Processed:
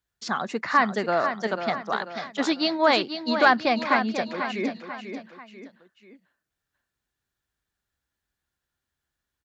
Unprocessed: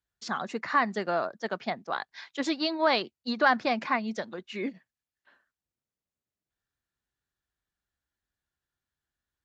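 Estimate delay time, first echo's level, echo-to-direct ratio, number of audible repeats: 491 ms, -8.5 dB, -7.5 dB, 3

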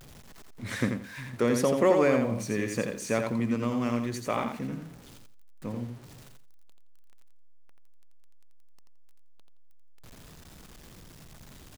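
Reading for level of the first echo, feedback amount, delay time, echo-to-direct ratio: -5.5 dB, 20%, 85 ms, -5.5 dB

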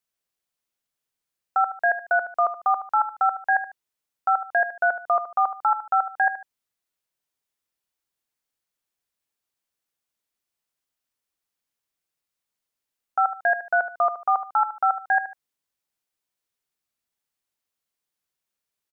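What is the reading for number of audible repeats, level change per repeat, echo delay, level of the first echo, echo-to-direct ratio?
2, -9.5 dB, 74 ms, -12.0 dB, -11.5 dB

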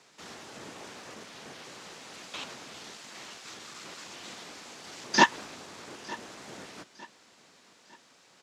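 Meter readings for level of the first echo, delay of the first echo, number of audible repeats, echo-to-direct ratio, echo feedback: -20.5 dB, 905 ms, 2, -20.0 dB, 39%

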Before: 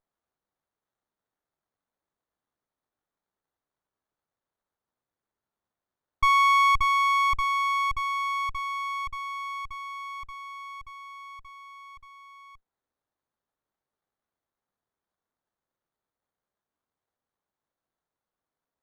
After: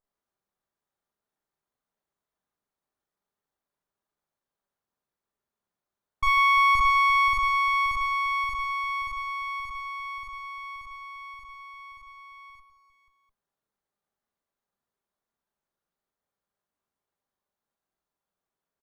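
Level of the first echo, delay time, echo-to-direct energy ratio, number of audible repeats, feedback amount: -2.5 dB, 40 ms, 1.0 dB, 5, no regular repeats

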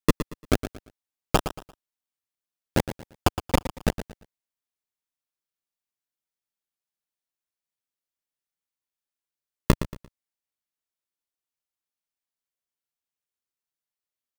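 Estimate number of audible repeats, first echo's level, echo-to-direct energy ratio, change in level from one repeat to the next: 3, -11.5 dB, -11.0 dB, -10.5 dB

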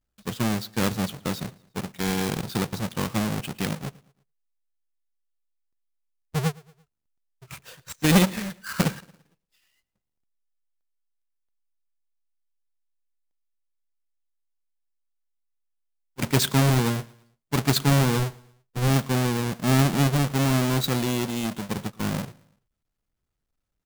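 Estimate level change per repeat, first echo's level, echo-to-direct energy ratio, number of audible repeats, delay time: -7.0 dB, -23.5 dB, -22.5 dB, 2, 113 ms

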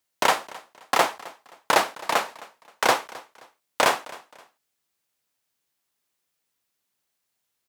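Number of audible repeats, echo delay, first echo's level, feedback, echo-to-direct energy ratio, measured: 2, 263 ms, -20.5 dB, 31%, -20.0 dB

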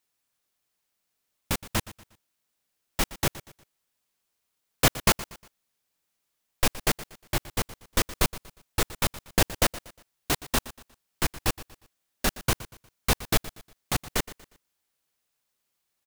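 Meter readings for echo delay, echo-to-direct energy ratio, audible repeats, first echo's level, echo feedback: 119 ms, -16.5 dB, 3, -17.0 dB, 36%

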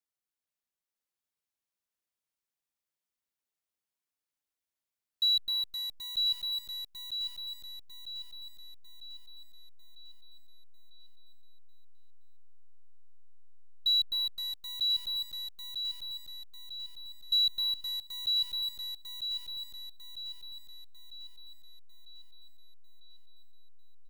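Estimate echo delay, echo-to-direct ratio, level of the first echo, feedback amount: 948 ms, -2.0 dB, -3.0 dB, 47%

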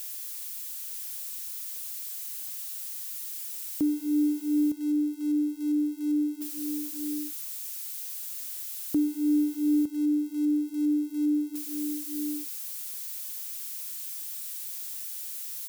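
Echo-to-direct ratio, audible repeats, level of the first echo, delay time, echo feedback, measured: -9.0 dB, 1, -9.0 dB, 910 ms, no regular repeats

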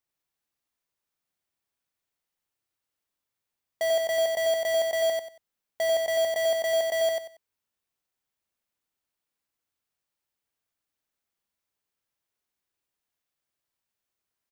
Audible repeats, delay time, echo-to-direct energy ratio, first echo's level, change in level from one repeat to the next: 3, 93 ms, -2.5 dB, -3.0 dB, -12.5 dB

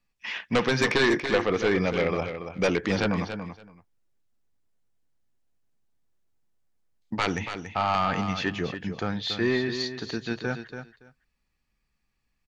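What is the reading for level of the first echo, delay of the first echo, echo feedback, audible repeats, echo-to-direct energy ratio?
-9.0 dB, 283 ms, 16%, 2, -9.0 dB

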